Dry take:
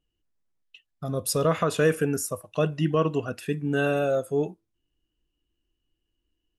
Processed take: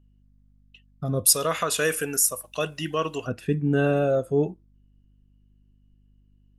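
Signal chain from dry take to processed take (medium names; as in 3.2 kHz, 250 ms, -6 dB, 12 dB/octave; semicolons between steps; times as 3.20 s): tilt EQ -1.5 dB/octave, from 1.24 s +3.5 dB/octave, from 3.26 s -2 dB/octave; hum 50 Hz, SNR 32 dB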